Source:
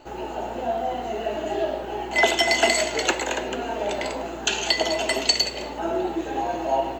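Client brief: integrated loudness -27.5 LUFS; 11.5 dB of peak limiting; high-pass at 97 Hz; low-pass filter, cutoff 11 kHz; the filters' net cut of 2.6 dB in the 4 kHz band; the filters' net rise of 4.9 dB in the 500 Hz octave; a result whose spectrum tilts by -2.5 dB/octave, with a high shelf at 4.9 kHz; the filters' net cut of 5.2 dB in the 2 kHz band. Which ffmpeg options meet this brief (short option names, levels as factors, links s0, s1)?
-af "highpass=97,lowpass=11000,equalizer=f=500:t=o:g=7.5,equalizer=f=2000:t=o:g=-6,equalizer=f=4000:t=o:g=-4,highshelf=f=4900:g=5,volume=0.75,alimiter=limit=0.133:level=0:latency=1"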